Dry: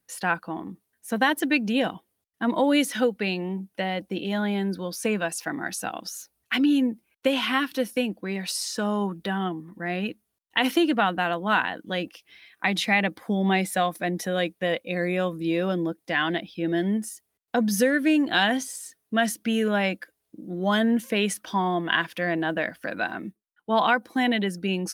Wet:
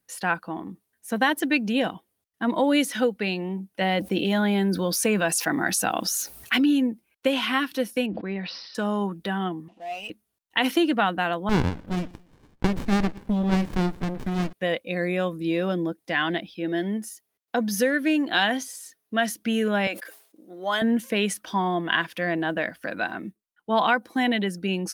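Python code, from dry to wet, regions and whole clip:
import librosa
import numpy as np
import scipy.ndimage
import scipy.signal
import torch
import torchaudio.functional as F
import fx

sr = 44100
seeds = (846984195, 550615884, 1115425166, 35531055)

y = fx.chain(x, sr, fx.high_shelf(hz=10000.0, db=4.5),
    fx.env_flatten(amount_pct=50), at=(3.81, 6.71))
y = fx.chain(y, sr, fx.air_absorb(metres=300.0),
    fx.resample_bad(factor=4, down='none', up='filtered'),
    fx.sustainer(db_per_s=47.0), at=(8.06, 8.75))
y = fx.chain(y, sr, fx.cvsd(bps=64000),
    fx.double_bandpass(hz=1400.0, octaves=2.0),
    fx.power_curve(exponent=0.7), at=(9.68, 10.1))
y = fx.chain(y, sr, fx.high_shelf(hz=8000.0, db=4.0),
    fx.echo_feedback(ms=116, feedback_pct=38, wet_db=-22.5),
    fx.running_max(window=65), at=(11.49, 14.53))
y = fx.chain(y, sr, fx.highpass(hz=220.0, slope=6),
    fx.peak_eq(hz=8300.0, db=-5.5, octaves=0.31), at=(16.55, 19.36))
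y = fx.chain(y, sr, fx.highpass(hz=530.0, slope=12),
    fx.sustainer(db_per_s=110.0), at=(19.87, 20.82))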